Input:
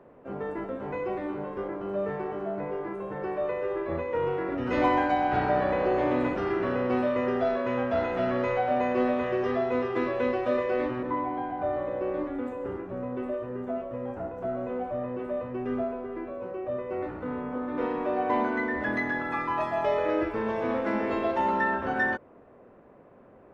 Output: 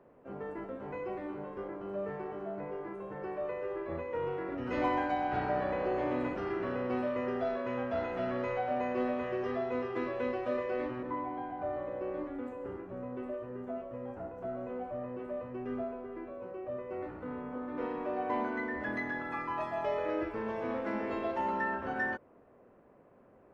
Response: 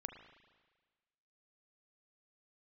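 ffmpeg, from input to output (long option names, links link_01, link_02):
-af "bandreject=frequency=3600:width=24,volume=-7dB"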